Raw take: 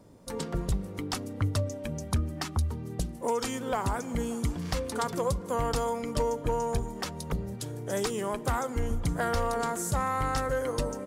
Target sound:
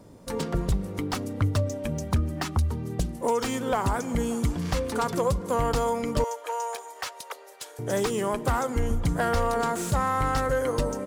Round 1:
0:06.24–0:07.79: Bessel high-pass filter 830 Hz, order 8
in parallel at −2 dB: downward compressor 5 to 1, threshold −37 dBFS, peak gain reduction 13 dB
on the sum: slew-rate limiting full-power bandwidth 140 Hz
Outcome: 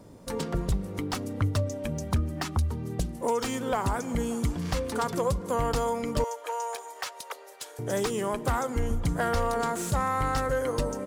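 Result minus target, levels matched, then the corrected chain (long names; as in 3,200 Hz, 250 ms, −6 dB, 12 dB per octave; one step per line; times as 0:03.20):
downward compressor: peak gain reduction +8 dB
0:06.24–0:07.79: Bessel high-pass filter 830 Hz, order 8
in parallel at −2 dB: downward compressor 5 to 1, threshold −27 dBFS, peak gain reduction 5 dB
on the sum: slew-rate limiting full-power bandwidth 140 Hz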